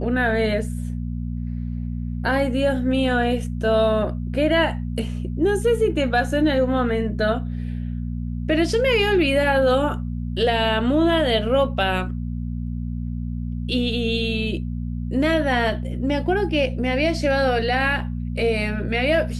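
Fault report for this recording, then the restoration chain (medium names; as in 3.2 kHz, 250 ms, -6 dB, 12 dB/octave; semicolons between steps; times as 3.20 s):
hum 60 Hz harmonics 4 -27 dBFS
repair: de-hum 60 Hz, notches 4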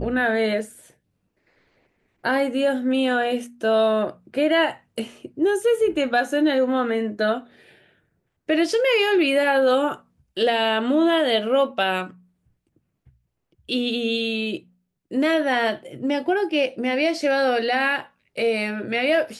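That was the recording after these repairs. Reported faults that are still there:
nothing left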